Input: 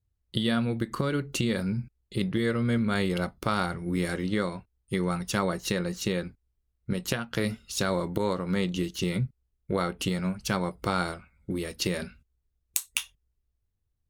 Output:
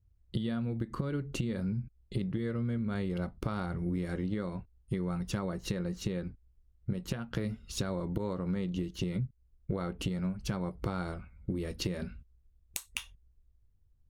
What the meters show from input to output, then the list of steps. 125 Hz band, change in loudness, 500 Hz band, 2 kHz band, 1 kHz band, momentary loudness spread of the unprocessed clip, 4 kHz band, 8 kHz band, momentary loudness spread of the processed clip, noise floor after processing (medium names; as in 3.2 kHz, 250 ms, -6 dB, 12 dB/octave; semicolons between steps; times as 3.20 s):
-3.0 dB, -6.5 dB, -8.0 dB, -11.5 dB, -11.0 dB, 8 LU, -10.0 dB, -10.0 dB, 7 LU, -67 dBFS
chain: tilt EQ -2.5 dB/octave; compression 6:1, threshold -31 dBFS, peak gain reduction 13.5 dB